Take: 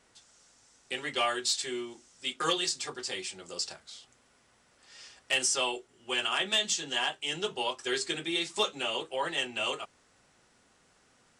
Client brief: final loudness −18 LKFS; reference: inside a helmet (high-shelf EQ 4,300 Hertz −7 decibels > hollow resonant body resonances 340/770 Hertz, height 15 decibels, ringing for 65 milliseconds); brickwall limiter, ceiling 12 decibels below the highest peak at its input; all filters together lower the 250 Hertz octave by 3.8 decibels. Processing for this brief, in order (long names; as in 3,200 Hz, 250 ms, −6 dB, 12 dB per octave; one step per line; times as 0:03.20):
parametric band 250 Hz −6.5 dB
brickwall limiter −29.5 dBFS
high-shelf EQ 4,300 Hz −7 dB
hollow resonant body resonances 340/770 Hz, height 15 dB, ringing for 65 ms
level +19 dB